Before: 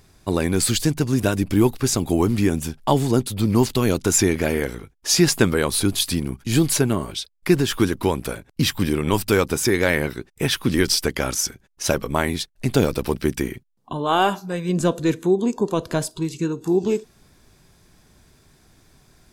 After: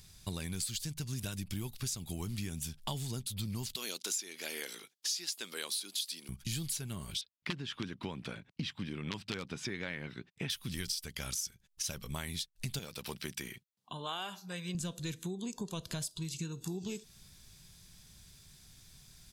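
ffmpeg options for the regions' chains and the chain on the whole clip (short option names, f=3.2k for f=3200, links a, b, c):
-filter_complex "[0:a]asettb=1/sr,asplit=3[a][b][c];[a]atrim=end=3.764[d];[b]atrim=start=3.76:end=6.29,asetpts=PTS-STARTPTS,afade=t=in:d=0.004:c=qsin,afade=t=out:st=2.526:d=0.004:c=qsin,highpass=f=300:w=0.5412,highpass=f=300:w=1.3066,equalizer=f=4.4k:t=o:w=1.1:g=5[e];[c]atrim=start=6.286[f];[d][e]acrossfade=d=0.004:c1=hsin:c2=qsin[g];[g][f]acrossfade=d=0.004:c1=qsin:c2=hsin,asettb=1/sr,asplit=3[h][i][j];[h]atrim=end=7.214[k];[i]atrim=start=7.21:end=10.5,asetpts=PTS-STARTPTS,afade=t=in:d=0.004:c=qsin,afade=t=out:st=3.286:d=0.004:c=qsin,equalizer=f=280:t=o:w=0.44:g=4.5,aeval=exprs='(mod(1.78*val(0)+1,2)-1)/1.78':c=same,highpass=150,lowpass=2.6k[l];[j]atrim=start=10.496[m];[k][l]acrossfade=d=0.004:c1=hsin:c2=qsin[n];[n][m]acrossfade=d=0.004:c1=qsin:c2=hsin,asettb=1/sr,asplit=3[o][p][q];[o]atrim=end=12.794[r];[p]atrim=start=12.79:end=14.75,asetpts=PTS-STARTPTS,afade=t=in:d=0.004:c=qsin,afade=t=out:st=1.956:d=0.004:c=qsin,highpass=f=490:p=1,highshelf=f=3.7k:g=-8[s];[q]atrim=start=14.746[t];[r][s]acrossfade=d=0.004:c1=hsin:c2=qsin[u];[u][t]acrossfade=d=0.004:c1=qsin:c2=hsin,firequalizer=gain_entry='entry(180,0);entry(280,-12);entry(3300,6)':delay=0.05:min_phase=1,acompressor=threshold=-32dB:ratio=6,volume=-4dB"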